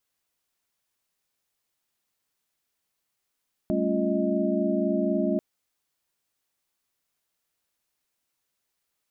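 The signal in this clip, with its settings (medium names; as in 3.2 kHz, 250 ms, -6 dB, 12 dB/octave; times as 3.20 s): chord G3/A3/C#4/F4/D#5 sine, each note -28.5 dBFS 1.69 s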